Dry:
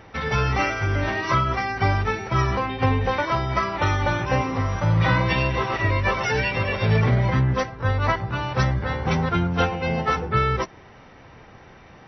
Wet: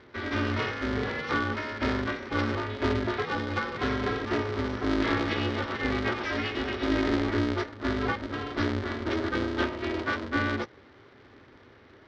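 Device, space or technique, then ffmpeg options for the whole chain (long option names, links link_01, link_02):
ring modulator pedal into a guitar cabinet: -af "aeval=exprs='val(0)*sgn(sin(2*PI*160*n/s))':channel_layout=same,highpass=79,equalizer=frequency=99:width_type=q:width=4:gain=5,equalizer=frequency=180:width_type=q:width=4:gain=-6,equalizer=frequency=400:width_type=q:width=4:gain=5,equalizer=frequency=670:width_type=q:width=4:gain=-7,equalizer=frequency=950:width_type=q:width=4:gain=-6,equalizer=frequency=2600:width_type=q:width=4:gain=-6,lowpass=frequency=4600:width=0.5412,lowpass=frequency=4600:width=1.3066,volume=-5.5dB"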